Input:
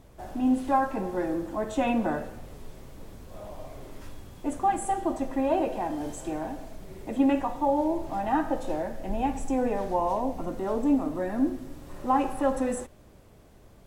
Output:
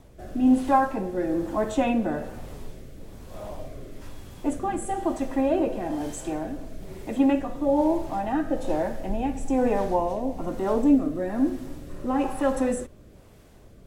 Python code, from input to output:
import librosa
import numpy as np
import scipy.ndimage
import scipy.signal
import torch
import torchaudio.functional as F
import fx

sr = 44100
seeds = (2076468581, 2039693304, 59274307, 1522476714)

y = fx.rotary(x, sr, hz=1.1)
y = y * librosa.db_to_amplitude(5.0)